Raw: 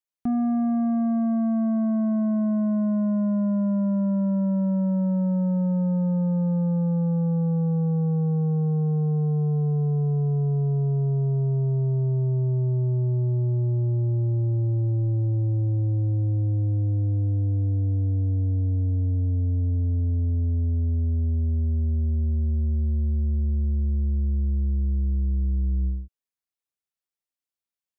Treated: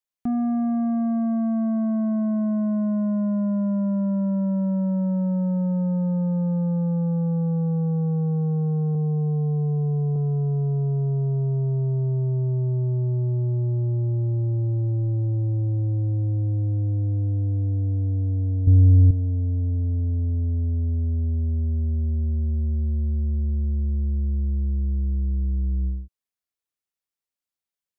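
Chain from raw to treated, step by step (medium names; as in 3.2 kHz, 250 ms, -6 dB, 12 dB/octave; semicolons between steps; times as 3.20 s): 8.95–10.16 s: low-pass 1.2 kHz 24 dB/octave; 18.67–19.11 s: bass shelf 440 Hz +10.5 dB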